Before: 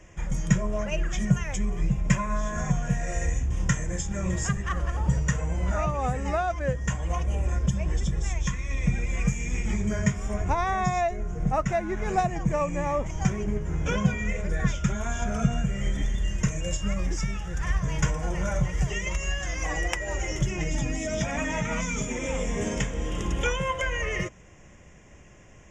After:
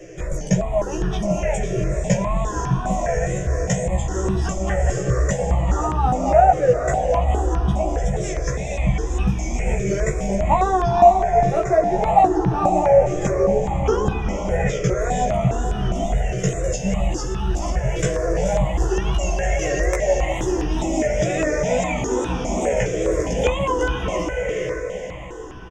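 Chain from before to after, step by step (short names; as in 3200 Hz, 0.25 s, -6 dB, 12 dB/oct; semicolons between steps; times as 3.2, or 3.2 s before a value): band shelf 510 Hz +11 dB; in parallel at +2.5 dB: compressor, threshold -32 dBFS, peak gain reduction 21 dB; on the sum: wow and flutter 93 cents; doubler 16 ms -2 dB; on a send: diffused feedback echo 0.477 s, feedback 54%, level -6 dB; on the sum: step phaser 4.9 Hz 240–2100 Hz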